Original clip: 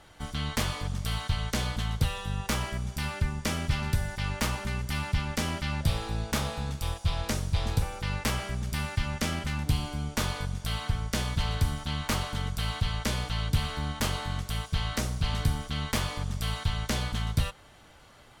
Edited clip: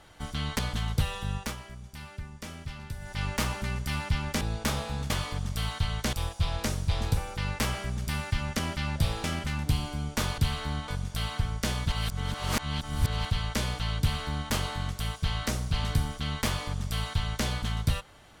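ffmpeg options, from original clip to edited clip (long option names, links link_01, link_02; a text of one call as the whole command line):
ffmpeg -i in.wav -filter_complex "[0:a]asplit=13[link_01][link_02][link_03][link_04][link_05][link_06][link_07][link_08][link_09][link_10][link_11][link_12][link_13];[link_01]atrim=end=0.592[link_14];[link_02]atrim=start=1.618:end=2.59,asetpts=PTS-STARTPTS,afade=type=out:start_time=0.752:duration=0.22:silence=0.281838[link_15];[link_03]atrim=start=2.59:end=4.02,asetpts=PTS-STARTPTS,volume=-11dB[link_16];[link_04]atrim=start=4.02:end=5.442,asetpts=PTS-STARTPTS,afade=type=in:duration=0.22:silence=0.281838[link_17];[link_05]atrim=start=6.088:end=6.782[link_18];[link_06]atrim=start=0.588:end=1.622[link_19];[link_07]atrim=start=6.778:end=9.242[link_20];[link_08]atrim=start=5.438:end=6.092[link_21];[link_09]atrim=start=9.238:end=10.382[link_22];[link_10]atrim=start=13.498:end=14.002[link_23];[link_11]atrim=start=10.378:end=11.422[link_24];[link_12]atrim=start=11.418:end=12.752,asetpts=PTS-STARTPTS,areverse[link_25];[link_13]atrim=start=12.748[link_26];[link_15][link_16][link_17]concat=n=3:v=0:a=1[link_27];[link_14][link_27]acrossfade=duration=0.004:curve1=hsin:curve2=hsin[link_28];[link_28][link_18]acrossfade=duration=0.004:curve1=hsin:curve2=hsin[link_29];[link_29][link_19]acrossfade=duration=0.004:curve1=hsin:curve2=hsin[link_30];[link_30][link_20]acrossfade=duration=0.004:curve1=hsin:curve2=hsin[link_31];[link_31][link_21]acrossfade=duration=0.004:curve1=hsin:curve2=hsin[link_32];[link_32][link_22]acrossfade=duration=0.004:curve1=hsin:curve2=hsin[link_33];[link_33][link_23]acrossfade=duration=0.004:curve1=hsin:curve2=hsin[link_34];[link_34][link_24]acrossfade=duration=0.004:curve1=hsin:curve2=hsin[link_35];[link_35][link_25]acrossfade=duration=0.004:curve1=hsin:curve2=hsin[link_36];[link_36][link_26]acrossfade=duration=0.004:curve1=hsin:curve2=hsin" out.wav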